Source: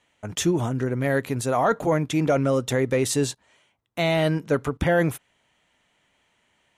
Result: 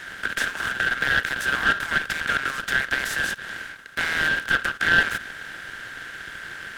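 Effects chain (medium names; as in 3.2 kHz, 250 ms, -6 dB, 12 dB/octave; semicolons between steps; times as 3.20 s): spectral levelling over time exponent 0.4; ladder high-pass 1.5 kHz, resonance 85%; delay time shaken by noise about 1.4 kHz, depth 0.032 ms; trim +4 dB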